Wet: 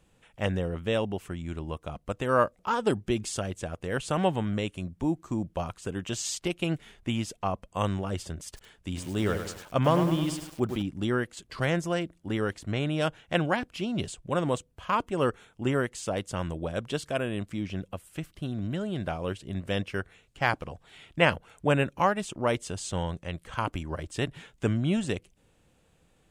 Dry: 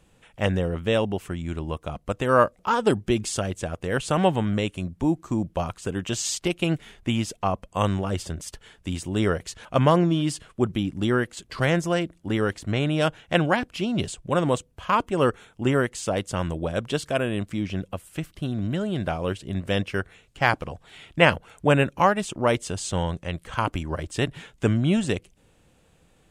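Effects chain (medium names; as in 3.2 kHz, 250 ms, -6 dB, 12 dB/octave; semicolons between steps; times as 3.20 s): 8.45–10.82 s: bit-crushed delay 102 ms, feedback 55%, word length 6-bit, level -7 dB; trim -5 dB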